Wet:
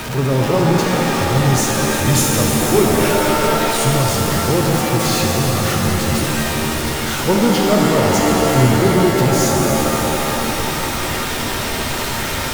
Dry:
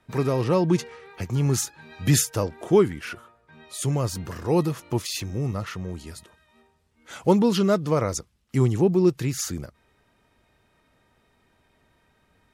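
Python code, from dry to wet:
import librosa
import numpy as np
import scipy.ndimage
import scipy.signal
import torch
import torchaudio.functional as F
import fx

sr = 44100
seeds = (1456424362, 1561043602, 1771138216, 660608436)

y = x + 0.5 * 10.0 ** (-21.5 / 20.0) * np.sign(x)
y = fx.rev_shimmer(y, sr, seeds[0], rt60_s=4.0, semitones=7, shimmer_db=-2, drr_db=-1.0)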